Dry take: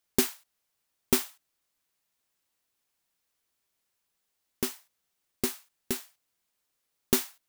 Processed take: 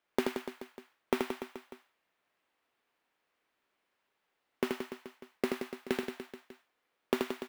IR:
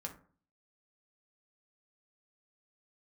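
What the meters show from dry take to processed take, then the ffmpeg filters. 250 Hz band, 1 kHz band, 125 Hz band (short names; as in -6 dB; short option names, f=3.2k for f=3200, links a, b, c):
-2.0 dB, +2.5 dB, -9.0 dB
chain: -filter_complex "[0:a]acrossover=split=220 3000:gain=0.224 1 0.0891[a][b][c];[a][b][c]amix=inputs=3:normalize=0,acompressor=threshold=-33dB:ratio=6,asplit=2[d][e];[e]aecho=0:1:80|176|291.2|429.4|595.3:0.631|0.398|0.251|0.158|0.1[f];[d][f]amix=inputs=2:normalize=0,volume=6dB"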